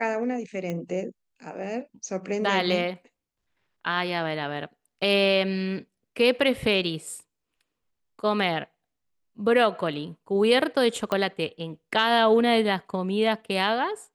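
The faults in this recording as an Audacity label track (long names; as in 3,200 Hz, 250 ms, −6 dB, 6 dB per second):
0.700000	0.700000	click −19 dBFS
11.120000	11.120000	click −14 dBFS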